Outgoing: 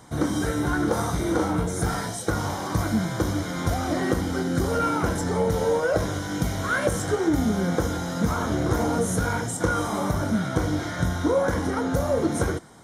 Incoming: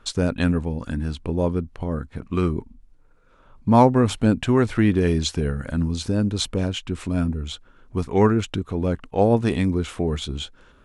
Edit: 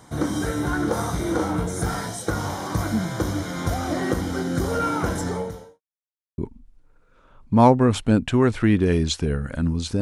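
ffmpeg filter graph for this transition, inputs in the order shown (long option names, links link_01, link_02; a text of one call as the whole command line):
ffmpeg -i cue0.wav -i cue1.wav -filter_complex "[0:a]apad=whole_dur=10.01,atrim=end=10.01,asplit=2[link_01][link_02];[link_01]atrim=end=5.81,asetpts=PTS-STARTPTS,afade=type=out:start_time=5.27:duration=0.54:curve=qua[link_03];[link_02]atrim=start=5.81:end=6.38,asetpts=PTS-STARTPTS,volume=0[link_04];[1:a]atrim=start=2.53:end=6.16,asetpts=PTS-STARTPTS,afade=type=in:duration=0.004:curve=hsin[link_05];[link_03][link_04][link_05]concat=n=3:v=0:a=1" out.wav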